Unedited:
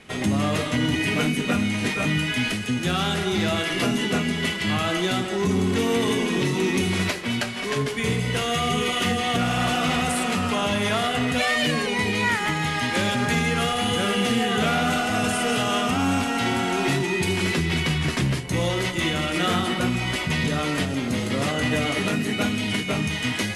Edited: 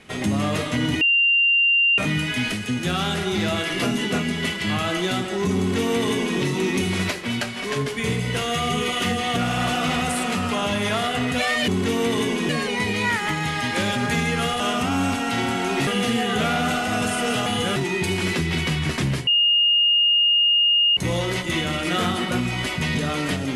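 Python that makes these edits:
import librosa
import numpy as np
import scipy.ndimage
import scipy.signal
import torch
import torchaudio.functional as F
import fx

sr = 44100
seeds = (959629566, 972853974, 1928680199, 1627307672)

y = fx.edit(x, sr, fx.bleep(start_s=1.01, length_s=0.97, hz=2780.0, db=-14.5),
    fx.duplicate(start_s=5.58, length_s=0.81, to_s=11.68),
    fx.swap(start_s=13.79, length_s=0.3, other_s=15.68, other_length_s=1.27),
    fx.insert_tone(at_s=18.46, length_s=1.7, hz=2840.0, db=-14.5), tone=tone)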